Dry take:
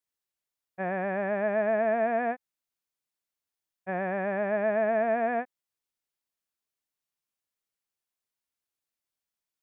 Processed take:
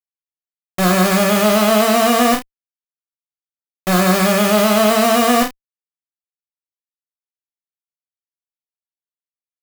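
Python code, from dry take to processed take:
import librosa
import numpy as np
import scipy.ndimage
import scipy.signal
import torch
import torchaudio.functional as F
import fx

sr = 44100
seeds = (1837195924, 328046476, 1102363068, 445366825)

y = fx.diode_clip(x, sr, knee_db=-30.5)
y = fx.small_body(y, sr, hz=(200.0, 310.0, 2100.0), ring_ms=25, db=9)
y = fx.quant_dither(y, sr, seeds[0], bits=6, dither='none')
y = fx.fuzz(y, sr, gain_db=53.0, gate_db=-60.0)
y = fx.room_early_taps(y, sr, ms=(33, 64), db=(-4.5, -13.5))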